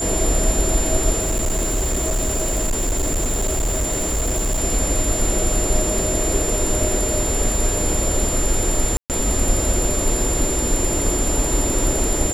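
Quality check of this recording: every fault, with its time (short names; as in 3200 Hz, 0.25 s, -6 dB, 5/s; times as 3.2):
crackle 33/s -26 dBFS
tone 7200 Hz -23 dBFS
1.19–4.61 clipped -17 dBFS
8.97–9.1 gap 0.128 s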